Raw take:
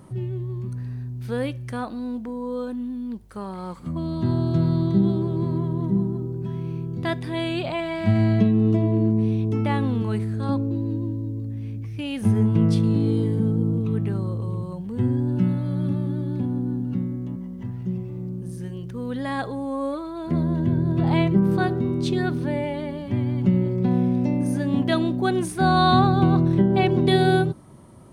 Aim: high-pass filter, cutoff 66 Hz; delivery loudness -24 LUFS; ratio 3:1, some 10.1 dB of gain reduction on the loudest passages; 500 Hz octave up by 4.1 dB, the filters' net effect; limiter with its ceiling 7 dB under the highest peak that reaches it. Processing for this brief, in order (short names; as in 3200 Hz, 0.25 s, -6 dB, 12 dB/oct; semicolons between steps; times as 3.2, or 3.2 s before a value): HPF 66 Hz; bell 500 Hz +6 dB; compressor 3:1, threshold -26 dBFS; gain +6.5 dB; limiter -15 dBFS